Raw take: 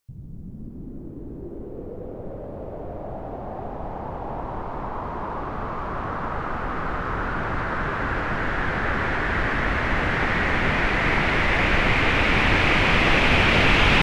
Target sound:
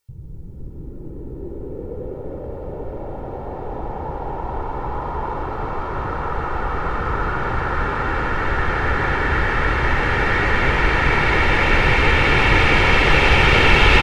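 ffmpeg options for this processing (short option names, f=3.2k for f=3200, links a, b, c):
-filter_complex "[0:a]aecho=1:1:2.2:0.69,asplit=7[a][b][c][d][e][f][g];[b]adelay=200,afreqshift=-79,volume=-5.5dB[h];[c]adelay=400,afreqshift=-158,volume=-11.3dB[i];[d]adelay=600,afreqshift=-237,volume=-17.2dB[j];[e]adelay=800,afreqshift=-316,volume=-23dB[k];[f]adelay=1000,afreqshift=-395,volume=-28.9dB[l];[g]adelay=1200,afreqshift=-474,volume=-34.7dB[m];[a][h][i][j][k][l][m]amix=inputs=7:normalize=0,volume=1dB"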